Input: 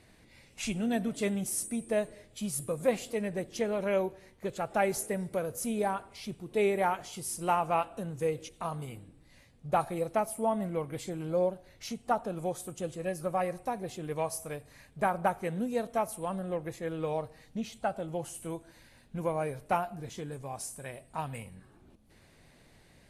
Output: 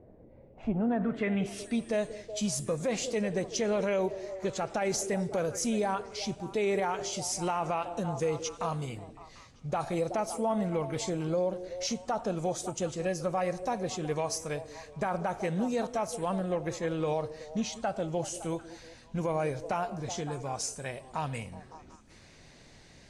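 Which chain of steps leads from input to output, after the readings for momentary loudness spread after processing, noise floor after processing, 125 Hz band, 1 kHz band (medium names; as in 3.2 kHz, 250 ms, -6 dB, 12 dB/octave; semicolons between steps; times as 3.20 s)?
7 LU, -55 dBFS, +3.0 dB, -1.0 dB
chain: repeats whose band climbs or falls 186 ms, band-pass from 340 Hz, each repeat 0.7 oct, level -12 dB; low-pass sweep 550 Hz -> 6.2 kHz, 0.47–1.97 s; peak limiter -25.5 dBFS, peak gain reduction 11.5 dB; trim +4 dB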